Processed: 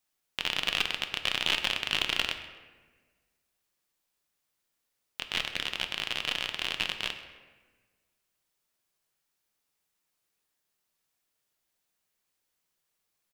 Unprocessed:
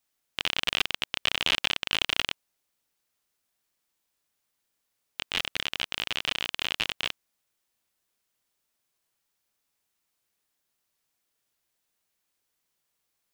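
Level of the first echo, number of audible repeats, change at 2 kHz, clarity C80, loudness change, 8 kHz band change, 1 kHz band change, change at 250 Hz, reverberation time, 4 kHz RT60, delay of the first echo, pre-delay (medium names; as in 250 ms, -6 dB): -18.5 dB, 1, -1.0 dB, 10.5 dB, -1.5 dB, -1.5 dB, -1.0 dB, -1.0 dB, 1.4 s, 0.85 s, 130 ms, 5 ms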